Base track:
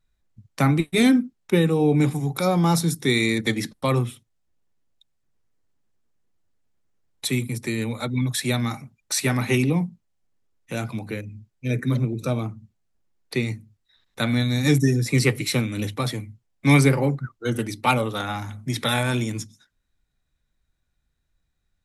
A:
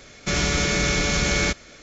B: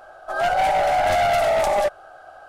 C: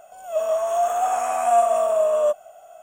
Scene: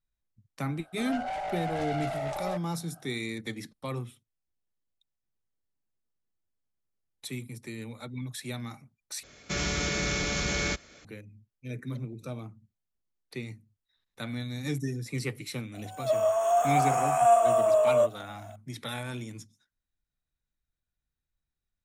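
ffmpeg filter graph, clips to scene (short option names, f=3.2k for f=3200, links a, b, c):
-filter_complex "[0:a]volume=-13.5dB[a];[2:a]lowpass=9.1k[b];[1:a]highpass=42[c];[a]asplit=2[d][e];[d]atrim=end=9.234[f];[c]atrim=end=1.82,asetpts=PTS-STARTPTS,volume=-7.5dB[g];[e]atrim=start=11.046[h];[b]atrim=end=2.48,asetpts=PTS-STARTPTS,volume=-15dB,afade=t=in:d=0.004:c=hsin,afade=t=out:st=2.476:d=0.004:c=hsin,adelay=690[i];[3:a]atrim=end=2.82,asetpts=PTS-STARTPTS,volume=-3dB,afade=t=in:d=0.004:c=hsin,afade=t=out:st=2.816:d=0.004:c=hsin,adelay=15740[j];[f][g]acrossfade=d=0.004:c1=hsin:c2=hsin[k];[k][h]acrossfade=d=0.004:c1=hsin:c2=hsin[l];[l][i][j]amix=inputs=3:normalize=0"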